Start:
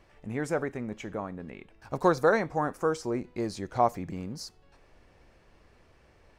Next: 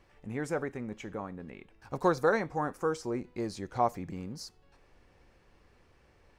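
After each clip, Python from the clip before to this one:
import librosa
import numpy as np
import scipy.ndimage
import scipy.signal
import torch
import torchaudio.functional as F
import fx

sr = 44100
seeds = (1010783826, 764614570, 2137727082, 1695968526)

y = fx.notch(x, sr, hz=640.0, q=12.0)
y = y * librosa.db_to_amplitude(-3.0)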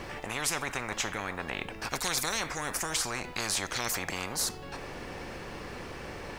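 y = fx.spectral_comp(x, sr, ratio=10.0)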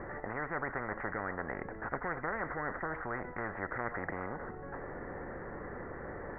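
y = scipy.signal.sosfilt(scipy.signal.cheby1(6, 3, 2000.0, 'lowpass', fs=sr, output='sos'), x)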